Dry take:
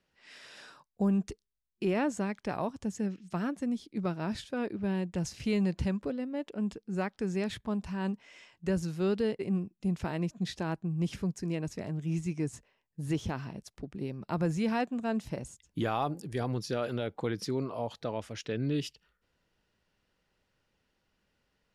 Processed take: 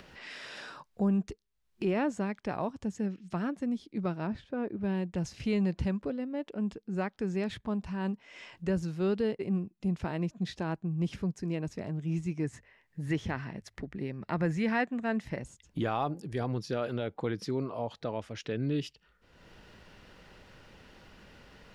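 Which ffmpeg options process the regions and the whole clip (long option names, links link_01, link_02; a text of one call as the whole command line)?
ffmpeg -i in.wav -filter_complex "[0:a]asettb=1/sr,asplit=3[link_01][link_02][link_03];[link_01]atrim=end=4.274[link_04];[link_02]atrim=start=4.27:end=4.81,asetpts=PTS-STARTPTS,afade=type=in:duration=0.004:curve=qsin,afade=type=out:start_time=0.536:duration=0.004:curve=qsin,lowpass=frequency=3000:poles=1,highshelf=frequency=2200:gain=-9[link_05];[link_03]atrim=start=4.806[link_06];[link_04][link_05]acrossfade=duration=0.004:curve1=hsin:curve2=qsin[link_07];[link_07][link_06]acrossfade=duration=0.004:curve1=qsin:curve2=hsin,asettb=1/sr,asplit=3[link_08][link_09][link_10];[link_08]atrim=end=12.444[link_11];[link_09]atrim=start=12.44:end=15.43,asetpts=PTS-STARTPTS,afade=type=in:duration=0.004:curve=qsin,afade=type=out:start_time=2.986:duration=0.004:curve=qsin,equalizer=frequency=1900:width_type=o:width=0.48:gain=11.5,bandreject=frequency=50:width_type=h:width=6,bandreject=frequency=100:width_type=h:width=6[link_12];[link_10]atrim=start=15.426[link_13];[link_11][link_12]acrossfade=duration=0.004:curve1=hsin:curve2=qsin[link_14];[link_14][link_13]acrossfade=duration=0.004:curve1=qsin:curve2=hsin,highshelf=frequency=6800:gain=-11.5,acompressor=mode=upward:threshold=-35dB:ratio=2.5" out.wav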